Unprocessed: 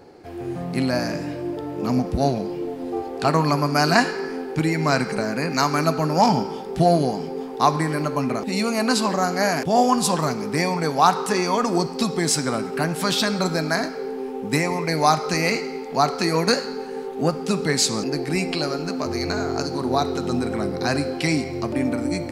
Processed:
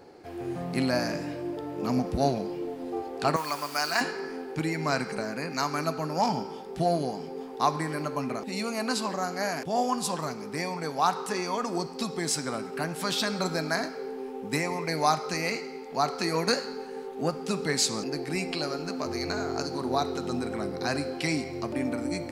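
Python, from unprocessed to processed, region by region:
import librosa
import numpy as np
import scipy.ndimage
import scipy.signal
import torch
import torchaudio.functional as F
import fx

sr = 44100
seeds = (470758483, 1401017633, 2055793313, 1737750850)

y = fx.chain(x, sr, fx.notch(hz=4200.0, q=25.0),
    fx.quant_dither(seeds[0], bits=6, dither='none'),
    fx.highpass(hz=1200.0, slope=6), at=(3.36, 4.01))
y = fx.rider(y, sr, range_db=10, speed_s=2.0)
y = fx.low_shelf(y, sr, hz=230.0, db=-4.5)
y = y * 10.0 ** (-7.0 / 20.0)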